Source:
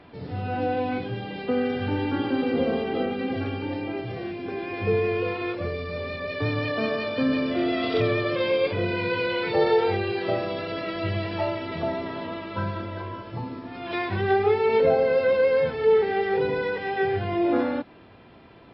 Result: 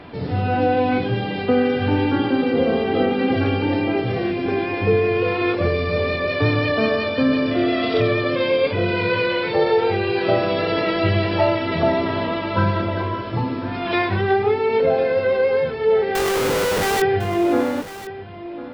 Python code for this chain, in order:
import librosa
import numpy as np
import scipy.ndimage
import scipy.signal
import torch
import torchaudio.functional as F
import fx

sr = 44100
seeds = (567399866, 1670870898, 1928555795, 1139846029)

p1 = fx.rider(x, sr, range_db=4, speed_s=0.5)
p2 = fx.schmitt(p1, sr, flips_db=-35.5, at=(16.15, 17.02))
p3 = p2 + fx.echo_single(p2, sr, ms=1051, db=-14.5, dry=0)
y = p3 * 10.0 ** (6.0 / 20.0)